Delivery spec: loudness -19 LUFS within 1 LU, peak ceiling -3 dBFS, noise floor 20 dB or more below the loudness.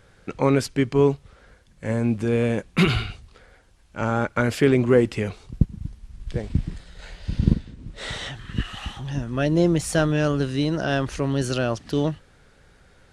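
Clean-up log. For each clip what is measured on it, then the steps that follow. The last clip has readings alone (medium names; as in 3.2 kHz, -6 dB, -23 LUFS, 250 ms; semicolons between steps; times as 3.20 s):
loudness -23.5 LUFS; peak level -3.0 dBFS; loudness target -19.0 LUFS
-> trim +4.5 dB; peak limiter -3 dBFS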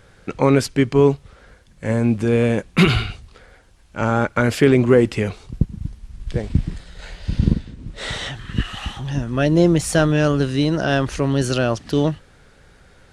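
loudness -19.5 LUFS; peak level -3.0 dBFS; noise floor -51 dBFS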